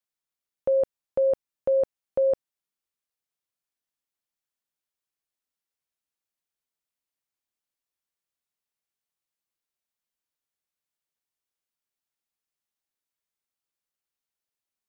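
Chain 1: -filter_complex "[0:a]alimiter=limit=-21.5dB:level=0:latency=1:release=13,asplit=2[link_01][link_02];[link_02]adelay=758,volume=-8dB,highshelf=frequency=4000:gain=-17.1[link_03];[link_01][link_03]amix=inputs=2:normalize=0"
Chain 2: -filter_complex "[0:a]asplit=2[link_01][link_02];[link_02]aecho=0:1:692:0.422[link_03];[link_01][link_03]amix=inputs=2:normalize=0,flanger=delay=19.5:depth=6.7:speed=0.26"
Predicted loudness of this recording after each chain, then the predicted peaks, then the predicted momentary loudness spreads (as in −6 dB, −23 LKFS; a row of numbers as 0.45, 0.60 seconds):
−31.0, −28.0 LKFS; −21.5, −17.5 dBFS; 9, 14 LU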